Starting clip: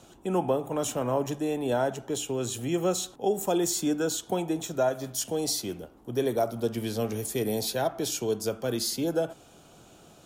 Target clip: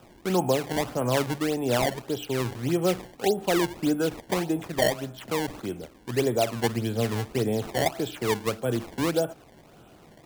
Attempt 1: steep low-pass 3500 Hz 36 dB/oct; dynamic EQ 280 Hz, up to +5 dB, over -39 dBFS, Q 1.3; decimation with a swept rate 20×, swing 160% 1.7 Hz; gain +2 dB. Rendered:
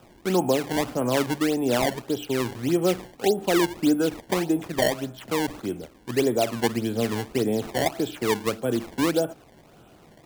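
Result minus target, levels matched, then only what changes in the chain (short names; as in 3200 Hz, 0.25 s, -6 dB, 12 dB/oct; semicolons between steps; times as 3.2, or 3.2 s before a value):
125 Hz band -4.0 dB
change: dynamic EQ 110 Hz, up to +5 dB, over -39 dBFS, Q 1.3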